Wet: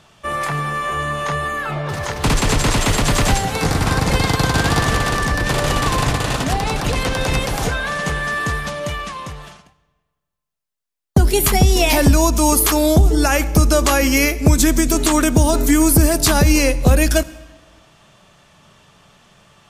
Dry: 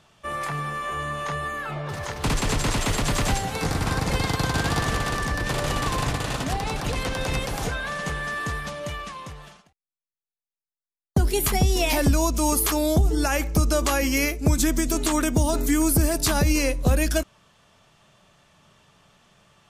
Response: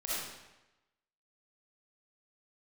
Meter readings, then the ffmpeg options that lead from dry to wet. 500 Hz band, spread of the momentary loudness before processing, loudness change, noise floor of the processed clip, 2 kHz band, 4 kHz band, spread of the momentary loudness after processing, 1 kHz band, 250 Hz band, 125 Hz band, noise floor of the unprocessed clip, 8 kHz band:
+7.5 dB, 9 LU, +7.5 dB, -76 dBFS, +7.5 dB, +7.5 dB, 9 LU, +7.5 dB, +7.5 dB, +7.5 dB, under -85 dBFS, +7.5 dB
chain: -filter_complex "[0:a]asplit=2[s0][s1];[1:a]atrim=start_sample=2205,asetrate=31752,aresample=44100[s2];[s1][s2]afir=irnorm=-1:irlink=0,volume=0.0531[s3];[s0][s3]amix=inputs=2:normalize=0,volume=2.24"

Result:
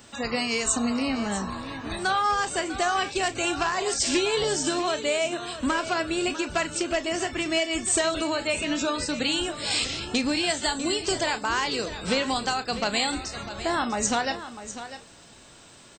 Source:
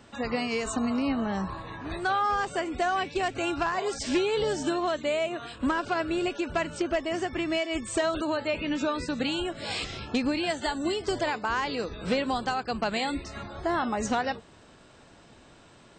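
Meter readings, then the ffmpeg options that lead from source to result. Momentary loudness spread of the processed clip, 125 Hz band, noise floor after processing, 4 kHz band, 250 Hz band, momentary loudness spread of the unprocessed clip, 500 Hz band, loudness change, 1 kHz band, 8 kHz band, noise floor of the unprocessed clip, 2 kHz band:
6 LU, +0.5 dB, -50 dBFS, +7.5 dB, +0.5 dB, 5 LU, +1.0 dB, +3.0 dB, +1.5 dB, +12.5 dB, -54 dBFS, +4.0 dB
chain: -filter_complex "[0:a]crystalizer=i=3.5:c=0,asplit=2[s0][s1];[s1]adelay=34,volume=0.224[s2];[s0][s2]amix=inputs=2:normalize=0,asplit=2[s3][s4];[s4]aecho=0:1:648:0.237[s5];[s3][s5]amix=inputs=2:normalize=0"

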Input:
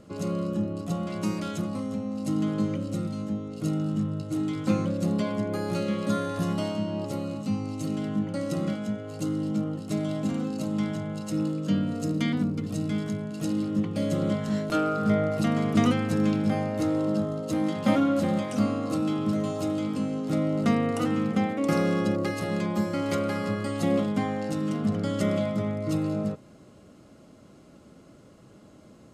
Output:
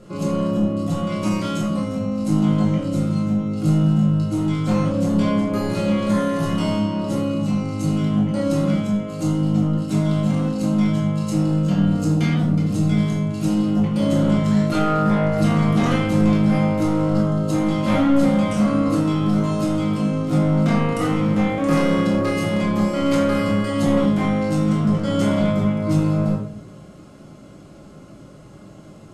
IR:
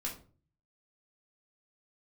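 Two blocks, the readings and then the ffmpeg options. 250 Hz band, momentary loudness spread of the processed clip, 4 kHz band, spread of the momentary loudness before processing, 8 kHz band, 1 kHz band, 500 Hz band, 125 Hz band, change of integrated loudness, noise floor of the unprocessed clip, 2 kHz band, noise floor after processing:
+7.5 dB, 5 LU, +6.5 dB, 7 LU, +5.5 dB, +7.0 dB, +6.0 dB, +10.5 dB, +8.0 dB, -52 dBFS, +6.5 dB, -42 dBFS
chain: -filter_complex "[0:a]asoftclip=type=tanh:threshold=0.075[s0];[1:a]atrim=start_sample=2205,asetrate=26019,aresample=44100[s1];[s0][s1]afir=irnorm=-1:irlink=0,volume=1.58"

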